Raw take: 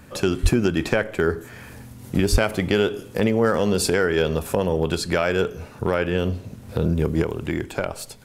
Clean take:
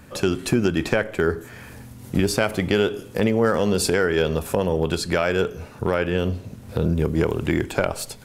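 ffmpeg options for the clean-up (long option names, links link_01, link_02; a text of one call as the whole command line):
ffmpeg -i in.wav -filter_complex "[0:a]asplit=3[link_01][link_02][link_03];[link_01]afade=type=out:start_time=0.42:duration=0.02[link_04];[link_02]highpass=frequency=140:width=0.5412,highpass=frequency=140:width=1.3066,afade=type=in:start_time=0.42:duration=0.02,afade=type=out:start_time=0.54:duration=0.02[link_05];[link_03]afade=type=in:start_time=0.54:duration=0.02[link_06];[link_04][link_05][link_06]amix=inputs=3:normalize=0,asplit=3[link_07][link_08][link_09];[link_07]afade=type=out:start_time=2.31:duration=0.02[link_10];[link_08]highpass=frequency=140:width=0.5412,highpass=frequency=140:width=1.3066,afade=type=in:start_time=2.31:duration=0.02,afade=type=out:start_time=2.43:duration=0.02[link_11];[link_09]afade=type=in:start_time=2.43:duration=0.02[link_12];[link_10][link_11][link_12]amix=inputs=3:normalize=0,asetnsamples=nb_out_samples=441:pad=0,asendcmd='7.22 volume volume 4dB',volume=0dB" out.wav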